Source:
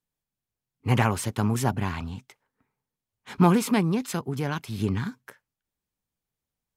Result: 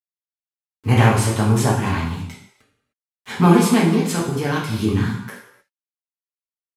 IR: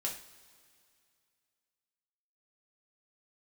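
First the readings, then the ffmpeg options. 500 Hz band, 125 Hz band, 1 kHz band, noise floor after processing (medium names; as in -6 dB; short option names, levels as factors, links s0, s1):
+8.0 dB, +8.0 dB, +6.5 dB, under -85 dBFS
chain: -filter_complex "[0:a]asplit=2[s0][s1];[s1]acompressor=threshold=0.0158:ratio=6,volume=0.75[s2];[s0][s2]amix=inputs=2:normalize=0,acrusher=bits=8:mix=0:aa=0.000001[s3];[1:a]atrim=start_sample=2205,afade=t=out:st=0.23:d=0.01,atrim=end_sample=10584,asetrate=25578,aresample=44100[s4];[s3][s4]afir=irnorm=-1:irlink=0,volume=1.12"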